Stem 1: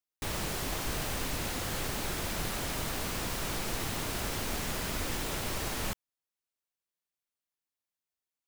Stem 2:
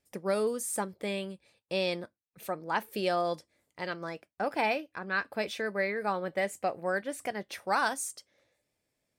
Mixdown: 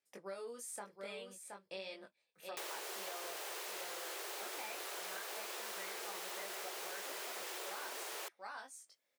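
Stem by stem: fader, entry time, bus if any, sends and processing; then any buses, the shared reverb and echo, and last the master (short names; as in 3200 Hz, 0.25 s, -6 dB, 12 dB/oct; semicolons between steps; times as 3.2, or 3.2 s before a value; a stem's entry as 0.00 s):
+2.5 dB, 2.35 s, no send, no echo send, steep high-pass 350 Hz 96 dB/oct
-5.0 dB, 0.00 s, no send, echo send -8.5 dB, weighting filter A; chorus 0.89 Hz, delay 19 ms, depth 2.2 ms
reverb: off
echo: echo 0.722 s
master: compressor 5:1, threshold -43 dBFS, peak gain reduction 13 dB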